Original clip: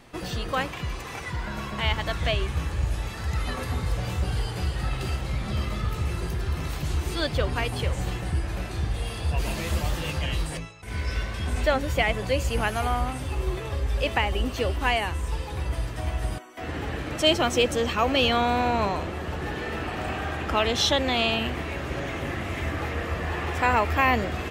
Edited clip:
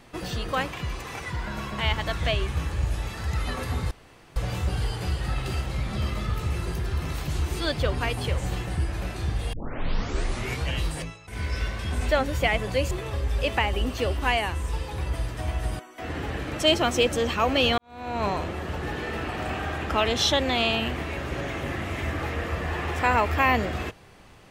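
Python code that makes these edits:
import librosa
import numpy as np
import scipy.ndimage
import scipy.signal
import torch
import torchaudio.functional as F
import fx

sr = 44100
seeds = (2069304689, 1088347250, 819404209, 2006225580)

y = fx.edit(x, sr, fx.insert_room_tone(at_s=3.91, length_s=0.45),
    fx.tape_start(start_s=9.08, length_s=1.2),
    fx.cut(start_s=12.46, length_s=1.04),
    fx.fade_in_span(start_s=18.37, length_s=0.5, curve='qua'), tone=tone)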